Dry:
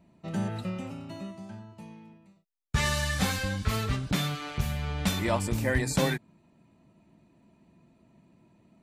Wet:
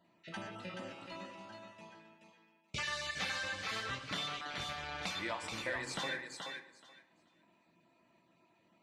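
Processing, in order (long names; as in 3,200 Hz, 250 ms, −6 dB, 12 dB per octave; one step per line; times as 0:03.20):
time-frequency cells dropped at random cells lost 20%
first difference
in parallel at −10.5 dB: bit-depth reduction 8 bits, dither none
on the sum: head-to-tape spacing loss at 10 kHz 34 dB
downward compressor 2.5 to 1, threshold −58 dBFS, peak gain reduction 10.5 dB
feedback echo with a high-pass in the loop 428 ms, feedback 17%, high-pass 330 Hz, level −5 dB
on a send at −8 dB: convolution reverb RT60 0.90 s, pre-delay 3 ms
on the sum: level +17.5 dB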